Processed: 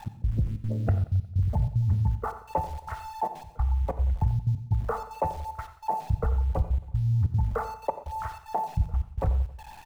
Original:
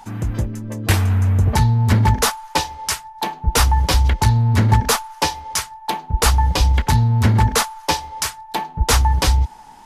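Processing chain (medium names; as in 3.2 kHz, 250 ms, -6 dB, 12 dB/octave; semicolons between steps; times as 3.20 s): resonances exaggerated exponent 2; comb 1.5 ms, depth 50%; compression 16:1, threshold -21 dBFS, peak gain reduction 15.5 dB; Gaussian low-pass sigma 6.1 samples; small samples zeroed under -45 dBFS; trance gate "x..xxxx.xxxxx." 188 bpm -24 dB; on a send: feedback delay 90 ms, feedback 53%, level -17 dB; on the sum: gated-style reverb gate 150 ms flat, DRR 10.5 dB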